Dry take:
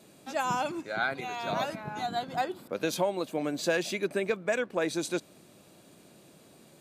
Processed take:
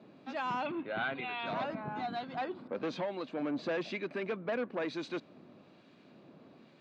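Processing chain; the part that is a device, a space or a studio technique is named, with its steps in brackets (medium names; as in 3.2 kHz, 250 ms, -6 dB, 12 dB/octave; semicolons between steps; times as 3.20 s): guitar amplifier with harmonic tremolo (harmonic tremolo 1.1 Hz, depth 50%, crossover 1.4 kHz; saturation -30 dBFS, distortion -10 dB; cabinet simulation 98–3900 Hz, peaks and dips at 250 Hz +6 dB, 1.1 kHz +3 dB, 3.3 kHz -4 dB); 0.66–1.46 s: resonant high shelf 4.4 kHz -10.5 dB, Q 3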